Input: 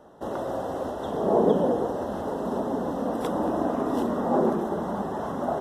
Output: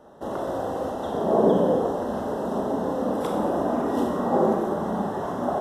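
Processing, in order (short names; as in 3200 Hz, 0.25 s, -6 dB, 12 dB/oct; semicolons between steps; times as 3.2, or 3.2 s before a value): Schroeder reverb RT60 0.77 s, combs from 29 ms, DRR 2 dB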